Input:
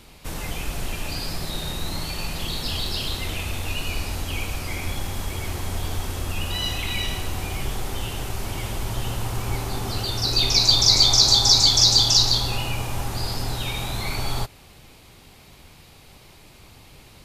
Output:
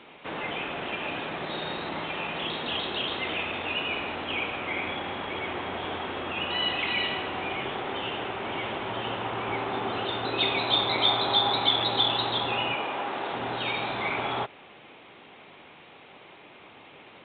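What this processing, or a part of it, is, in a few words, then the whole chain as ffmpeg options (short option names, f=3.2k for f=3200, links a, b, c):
telephone: -filter_complex "[0:a]asettb=1/sr,asplit=3[a][b][c];[a]atrim=end=12.744[d];[b]atrim=start=12.74:end=13.33,asetpts=PTS-STARTPTS,afade=t=in:d=0.004:c=qsin,afade=t=out:st=0.586:d=0.004:c=qsin,highpass=240[e];[c]atrim=start=13.326[f];[d][e]acrossfade=d=0.004:c1=hsin:c2=qsin[g];[g][f]acrossfade=d=0.004:c1=qsin:c2=hsin,highpass=310,lowpass=3.2k,volume=4dB" -ar 8000 -c:a pcm_alaw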